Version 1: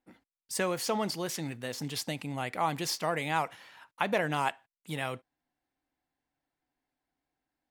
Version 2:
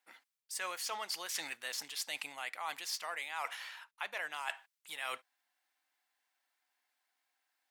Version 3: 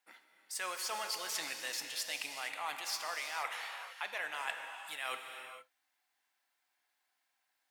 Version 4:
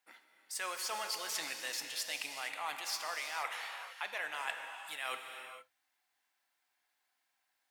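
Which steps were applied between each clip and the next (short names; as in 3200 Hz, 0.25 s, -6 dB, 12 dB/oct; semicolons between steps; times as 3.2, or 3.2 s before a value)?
HPF 1200 Hz 12 dB/oct; reverse; compressor 10:1, threshold -44 dBFS, peak gain reduction 17 dB; reverse; gain +8 dB
non-linear reverb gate 0.49 s flat, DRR 4.5 dB
notches 60/120/180 Hz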